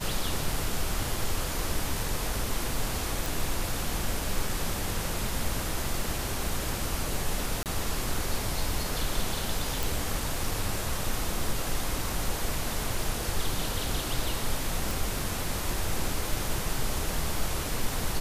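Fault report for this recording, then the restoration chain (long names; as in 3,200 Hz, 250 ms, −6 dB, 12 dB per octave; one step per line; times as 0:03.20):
0:03.26: click
0:07.63–0:07.66: drop-out 28 ms
0:09.83: click
0:14.91: click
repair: click removal
repair the gap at 0:07.63, 28 ms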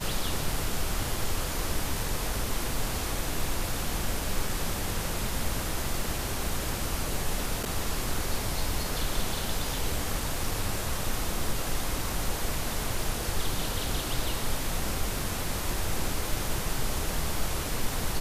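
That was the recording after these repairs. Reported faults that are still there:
none of them is left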